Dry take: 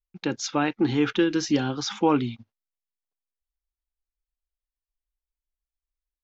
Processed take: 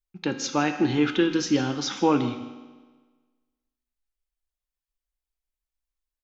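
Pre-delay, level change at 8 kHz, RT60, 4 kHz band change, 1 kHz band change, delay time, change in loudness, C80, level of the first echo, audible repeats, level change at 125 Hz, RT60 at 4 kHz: 4 ms, n/a, 1.4 s, +1.0 dB, +0.5 dB, 0.16 s, +0.5 dB, 9.5 dB, -17.0 dB, 1, -0.5 dB, 1.2 s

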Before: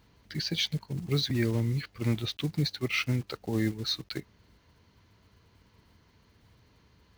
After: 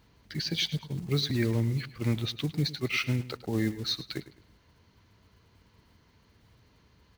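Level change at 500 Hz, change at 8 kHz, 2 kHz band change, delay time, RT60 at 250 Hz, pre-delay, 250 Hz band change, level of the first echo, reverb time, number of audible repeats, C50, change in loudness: 0.0 dB, 0.0 dB, 0.0 dB, 0.105 s, none, none, 0.0 dB, -16.0 dB, none, 2, none, 0.0 dB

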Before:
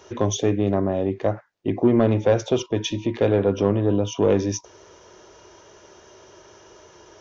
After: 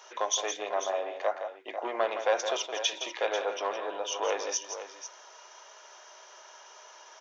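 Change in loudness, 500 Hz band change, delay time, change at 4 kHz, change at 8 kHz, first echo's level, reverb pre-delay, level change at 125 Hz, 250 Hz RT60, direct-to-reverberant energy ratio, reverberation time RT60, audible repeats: -9.5 dB, -9.5 dB, 0.166 s, +1.0 dB, n/a, -9.0 dB, none, under -40 dB, none, none, none, 2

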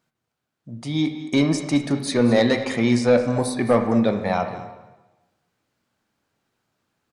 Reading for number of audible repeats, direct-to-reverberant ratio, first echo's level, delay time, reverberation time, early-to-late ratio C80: 1, 5.5 dB, -15.0 dB, 0.216 s, 1.0 s, 9.0 dB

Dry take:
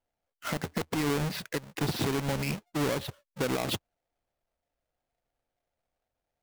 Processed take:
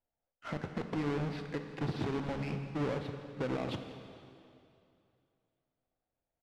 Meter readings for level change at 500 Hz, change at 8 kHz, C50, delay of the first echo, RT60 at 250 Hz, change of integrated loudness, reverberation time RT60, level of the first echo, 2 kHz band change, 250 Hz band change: -4.5 dB, -21.0 dB, 7.0 dB, 0.169 s, 2.5 s, -5.5 dB, 2.6 s, -18.0 dB, -8.0 dB, -4.0 dB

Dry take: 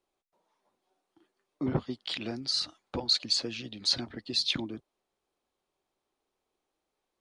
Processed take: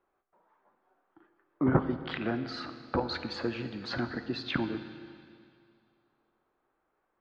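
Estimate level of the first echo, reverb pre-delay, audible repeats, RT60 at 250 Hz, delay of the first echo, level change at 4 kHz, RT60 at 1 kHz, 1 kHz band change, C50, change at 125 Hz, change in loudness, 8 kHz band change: none, 14 ms, none, 2.2 s, none, -12.5 dB, 2.3 s, +8.5 dB, 10.0 dB, +4.5 dB, -2.5 dB, under -20 dB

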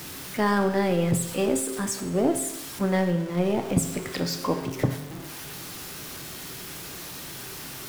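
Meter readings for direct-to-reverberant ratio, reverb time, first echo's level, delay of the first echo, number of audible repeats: 6.5 dB, 1.0 s, none, none, none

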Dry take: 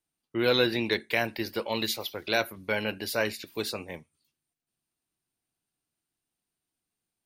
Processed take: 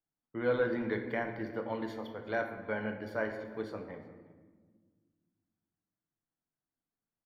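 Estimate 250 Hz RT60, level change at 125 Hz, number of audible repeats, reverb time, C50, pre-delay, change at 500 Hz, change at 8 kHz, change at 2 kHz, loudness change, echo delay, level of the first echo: 2.5 s, -5.0 dB, 1, 1.5 s, 7.0 dB, 3 ms, -4.5 dB, under -25 dB, -8.0 dB, -7.0 dB, 0.363 s, -22.0 dB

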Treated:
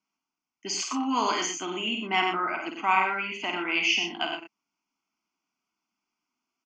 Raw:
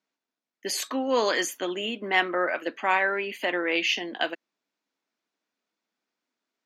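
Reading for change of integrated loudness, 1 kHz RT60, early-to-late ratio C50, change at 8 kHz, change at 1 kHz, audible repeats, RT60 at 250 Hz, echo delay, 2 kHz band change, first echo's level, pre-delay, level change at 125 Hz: -0.5 dB, none, none, +1.5 dB, +2.0 dB, 2, none, 52 ms, -1.5 dB, -6.0 dB, none, n/a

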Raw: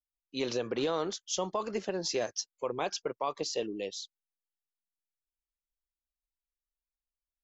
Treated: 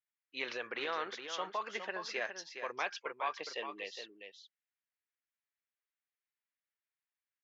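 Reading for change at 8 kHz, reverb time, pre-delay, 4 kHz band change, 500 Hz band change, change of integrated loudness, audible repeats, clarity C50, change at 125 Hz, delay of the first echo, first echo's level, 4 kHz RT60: n/a, none, none, -5.5 dB, -9.5 dB, -5.5 dB, 1, none, under -15 dB, 0.413 s, -8.0 dB, none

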